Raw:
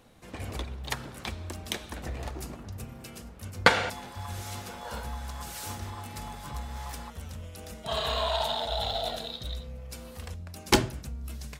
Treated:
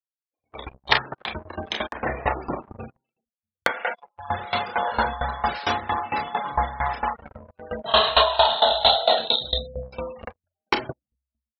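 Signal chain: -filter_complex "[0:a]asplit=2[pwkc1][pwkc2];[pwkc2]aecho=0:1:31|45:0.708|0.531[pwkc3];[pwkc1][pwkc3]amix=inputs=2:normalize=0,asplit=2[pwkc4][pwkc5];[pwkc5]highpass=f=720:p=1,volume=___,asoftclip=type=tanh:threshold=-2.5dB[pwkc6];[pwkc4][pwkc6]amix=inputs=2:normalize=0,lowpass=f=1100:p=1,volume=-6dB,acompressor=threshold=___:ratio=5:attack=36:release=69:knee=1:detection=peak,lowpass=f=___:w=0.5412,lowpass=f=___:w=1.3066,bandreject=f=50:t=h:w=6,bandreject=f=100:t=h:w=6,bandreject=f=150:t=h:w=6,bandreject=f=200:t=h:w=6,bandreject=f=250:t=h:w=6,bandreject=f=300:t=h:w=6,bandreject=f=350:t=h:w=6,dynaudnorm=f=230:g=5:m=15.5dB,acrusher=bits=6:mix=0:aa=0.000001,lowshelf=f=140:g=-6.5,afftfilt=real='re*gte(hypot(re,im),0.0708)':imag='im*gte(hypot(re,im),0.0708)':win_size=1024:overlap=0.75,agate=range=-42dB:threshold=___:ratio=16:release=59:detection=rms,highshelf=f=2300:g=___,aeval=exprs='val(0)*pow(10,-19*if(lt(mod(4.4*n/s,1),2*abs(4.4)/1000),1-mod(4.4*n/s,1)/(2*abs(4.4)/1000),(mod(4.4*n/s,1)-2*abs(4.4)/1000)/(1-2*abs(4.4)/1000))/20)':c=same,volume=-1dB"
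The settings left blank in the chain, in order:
15dB, -28dB, 5800, 5800, -27dB, 9.5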